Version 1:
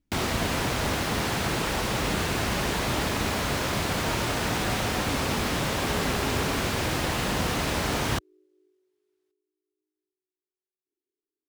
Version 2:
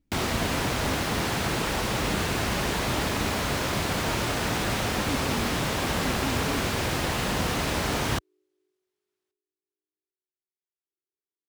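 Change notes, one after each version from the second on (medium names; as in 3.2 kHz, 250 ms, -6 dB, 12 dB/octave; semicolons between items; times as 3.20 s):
speech +3.5 dB; second sound: add high-pass 1.2 kHz 6 dB/octave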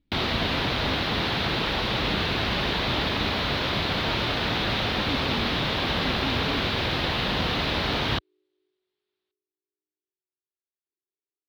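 master: add resonant high shelf 5.5 kHz -13.5 dB, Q 3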